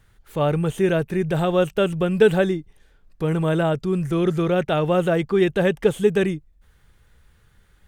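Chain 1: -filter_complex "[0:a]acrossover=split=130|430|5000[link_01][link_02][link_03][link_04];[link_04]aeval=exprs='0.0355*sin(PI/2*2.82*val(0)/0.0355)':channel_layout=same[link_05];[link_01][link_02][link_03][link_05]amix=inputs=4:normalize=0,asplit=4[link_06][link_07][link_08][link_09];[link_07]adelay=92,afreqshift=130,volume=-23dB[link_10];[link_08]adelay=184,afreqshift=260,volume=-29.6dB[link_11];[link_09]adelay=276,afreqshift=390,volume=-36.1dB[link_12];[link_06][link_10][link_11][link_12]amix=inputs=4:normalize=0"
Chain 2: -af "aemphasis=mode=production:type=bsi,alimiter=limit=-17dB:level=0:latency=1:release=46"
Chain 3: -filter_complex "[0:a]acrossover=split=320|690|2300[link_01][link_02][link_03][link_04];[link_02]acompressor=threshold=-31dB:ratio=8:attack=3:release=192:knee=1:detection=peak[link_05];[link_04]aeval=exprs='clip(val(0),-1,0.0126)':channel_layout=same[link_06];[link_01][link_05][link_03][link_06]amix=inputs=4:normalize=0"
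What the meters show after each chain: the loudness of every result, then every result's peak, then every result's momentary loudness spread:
−21.0, −27.0, −24.0 LKFS; −3.0, −17.0, −9.0 dBFS; 6, 4, 4 LU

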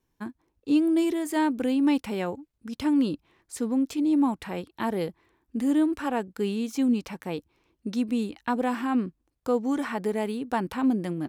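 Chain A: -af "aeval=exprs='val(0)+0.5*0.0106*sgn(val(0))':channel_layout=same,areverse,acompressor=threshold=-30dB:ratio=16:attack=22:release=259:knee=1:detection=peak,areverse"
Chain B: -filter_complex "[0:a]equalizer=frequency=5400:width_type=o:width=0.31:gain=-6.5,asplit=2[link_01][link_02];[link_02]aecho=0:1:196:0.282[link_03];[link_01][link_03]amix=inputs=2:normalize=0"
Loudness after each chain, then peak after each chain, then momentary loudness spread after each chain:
−34.5, −27.0 LKFS; −20.5, −13.0 dBFS; 6, 12 LU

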